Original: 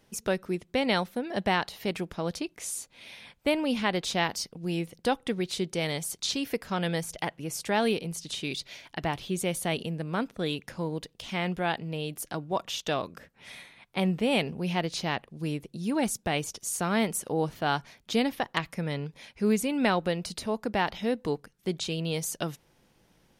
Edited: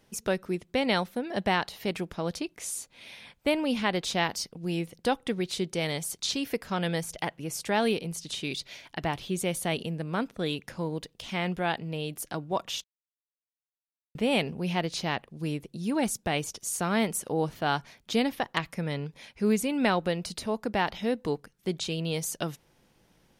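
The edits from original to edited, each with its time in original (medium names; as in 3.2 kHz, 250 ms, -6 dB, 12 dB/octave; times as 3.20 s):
12.84–14.15 s: mute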